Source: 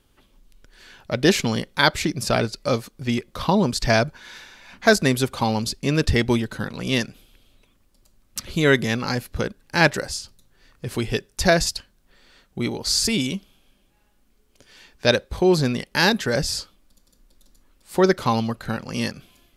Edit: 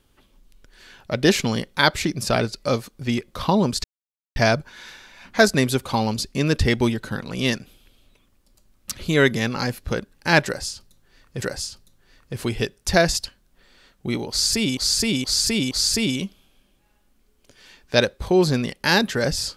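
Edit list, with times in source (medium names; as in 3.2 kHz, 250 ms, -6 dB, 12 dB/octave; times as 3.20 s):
3.84 s: insert silence 0.52 s
9.94–10.90 s: loop, 2 plays
12.82–13.29 s: loop, 4 plays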